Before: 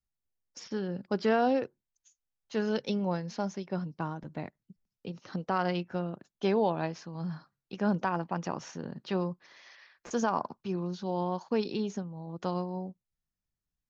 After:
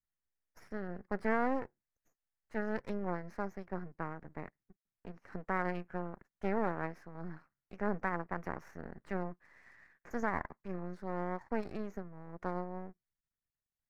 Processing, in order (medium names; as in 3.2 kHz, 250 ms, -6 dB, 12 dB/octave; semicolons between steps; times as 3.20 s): half-wave rectifier; resonant high shelf 2.5 kHz -9.5 dB, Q 3; trim -4.5 dB